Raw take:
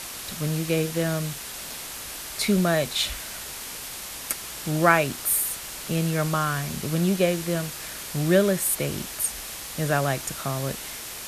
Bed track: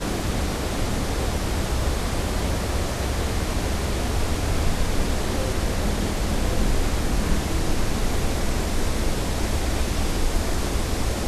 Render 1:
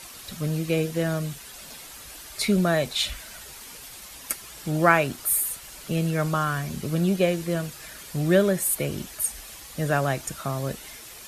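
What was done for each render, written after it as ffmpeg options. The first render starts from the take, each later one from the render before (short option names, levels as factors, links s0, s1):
-af "afftdn=nr=9:nf=-37"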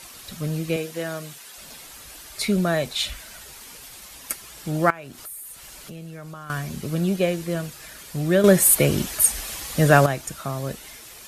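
-filter_complex "[0:a]asettb=1/sr,asplit=3[s0][s1][s2];[s0]atrim=end=0.764[s3];[s1]atrim=start=0.76:end=1.58,asetpts=PTS-STARTPTS,afade=t=in:d=0.004:c=qsin,afade=t=out:st=0.816:d=0.004:c=qsin,highpass=f=450:p=1[s4];[s2]atrim=start=1.576[s5];[s3][s4]acrossfade=d=0.004:c1=hsin:c2=qsin[s6];[s6][s5]acrossfade=d=0.004:c1=qsin:c2=hsin,asettb=1/sr,asplit=3[s7][s8][s9];[s7]atrim=end=4.904[s10];[s8]atrim=start=4.9:end=6.5,asetpts=PTS-STARTPTS,afade=t=in:d=0.004:c=qsin,afade=t=out:st=1.596:d=0.004:c=qsin,acompressor=threshold=0.0141:ratio=4:attack=3.2:release=140:knee=1:detection=peak[s11];[s9]atrim=start=6.496[s12];[s10][s11]acrossfade=d=0.004:c1=hsin:c2=qsin[s13];[s13][s12]acrossfade=d=0.004:c1=qsin:c2=hsin,asplit=3[s14][s15][s16];[s14]atrim=end=8.442[s17];[s15]atrim=start=8.438:end=10.062,asetpts=PTS-STARTPTS,volume=2.82[s18];[s16]atrim=start=10.058[s19];[s17][s18]acrossfade=d=0.004:c1=hsin:c2=hsin[s20];[s20][s19]acrossfade=d=0.004:c1=hsin:c2=hsin"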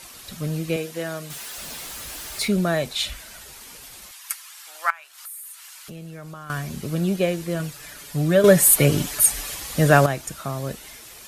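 -filter_complex "[0:a]asettb=1/sr,asplit=3[s0][s1][s2];[s0]atrim=end=1.304[s3];[s1]atrim=start=1.3:end=2.48,asetpts=PTS-STARTPTS,afade=t=in:d=0.004:c=qsin,afade=t=out:st=1.176:d=0.004:c=qsin,aeval=exprs='val(0)+0.5*0.02*sgn(val(0))':c=same[s4];[s2]atrim=start=2.476[s5];[s3][s4]acrossfade=d=0.004:c1=hsin:c2=qsin[s6];[s6][s5]acrossfade=d=0.004:c1=qsin:c2=hsin,asettb=1/sr,asplit=3[s7][s8][s9];[s7]atrim=end=4.114[s10];[s8]atrim=start=4.11:end=5.88,asetpts=PTS-STARTPTS,afade=t=in:d=0.004:c=qsin,afade=t=out:st=1.766:d=0.004:c=qsin,highpass=f=980:w=0.5412,highpass=f=980:w=1.3066[s11];[s9]atrim=start=5.876[s12];[s10][s11]acrossfade=d=0.004:c1=hsin:c2=qsin[s13];[s13][s12]acrossfade=d=0.004:c1=qsin:c2=hsin,asettb=1/sr,asplit=3[s14][s15][s16];[s14]atrim=end=7.594[s17];[s15]atrim=start=7.59:end=9.55,asetpts=PTS-STARTPTS,afade=t=in:d=0.004:c=qsin,afade=t=out:st=1.956:d=0.004:c=qsin,aecho=1:1:6.9:0.55,atrim=end_sample=86436[s18];[s16]atrim=start=9.546[s19];[s17][s18]acrossfade=d=0.004:c1=hsin:c2=qsin[s20];[s20][s19]acrossfade=d=0.004:c1=qsin:c2=hsin"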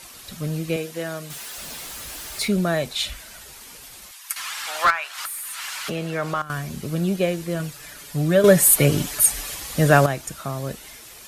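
-filter_complex "[0:a]asettb=1/sr,asplit=3[s0][s1][s2];[s0]atrim=end=4.364[s3];[s1]atrim=start=4.36:end=6.42,asetpts=PTS-STARTPTS,afade=t=in:d=0.004:c=qsin,afade=t=out:st=2.056:d=0.004:c=qsin,asplit=2[s4][s5];[s5]highpass=f=720:p=1,volume=20,asoftclip=type=tanh:threshold=0.447[s6];[s4][s6]amix=inputs=2:normalize=0,lowpass=f=2100:p=1,volume=0.501[s7];[s2]atrim=start=6.416[s8];[s3][s7]acrossfade=d=0.004:c1=hsin:c2=qsin[s9];[s9][s8]acrossfade=d=0.004:c1=qsin:c2=hsin"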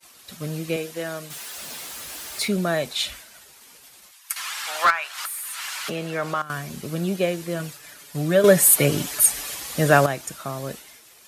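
-af "highpass=f=190:p=1,agate=range=0.0224:threshold=0.0158:ratio=3:detection=peak"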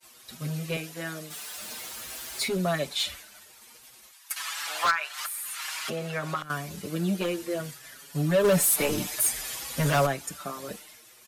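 -filter_complex "[0:a]asoftclip=type=hard:threshold=0.141,asplit=2[s0][s1];[s1]adelay=6,afreqshift=0.54[s2];[s0][s2]amix=inputs=2:normalize=1"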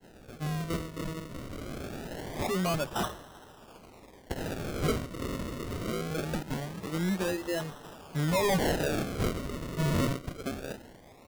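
-af "acrusher=samples=37:mix=1:aa=0.000001:lfo=1:lforange=37:lforate=0.23,asoftclip=type=tanh:threshold=0.0708"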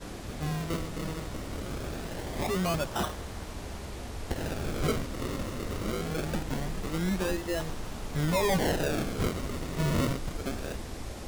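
-filter_complex "[1:a]volume=0.178[s0];[0:a][s0]amix=inputs=2:normalize=0"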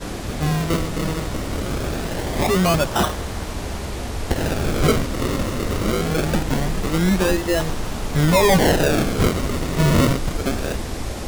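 -af "volume=3.76"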